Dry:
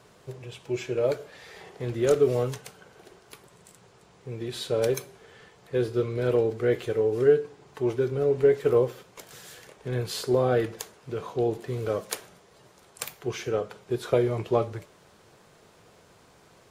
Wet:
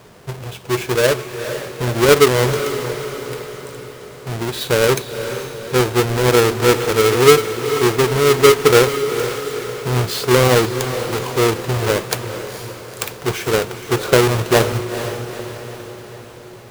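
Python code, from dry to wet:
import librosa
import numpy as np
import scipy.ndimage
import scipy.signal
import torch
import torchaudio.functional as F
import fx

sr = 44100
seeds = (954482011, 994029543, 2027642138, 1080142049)

y = fx.halfwave_hold(x, sr)
y = fx.echo_diffused(y, sr, ms=465, feedback_pct=54, wet_db=-9.5)
y = F.gain(torch.from_numpy(y), 6.5).numpy()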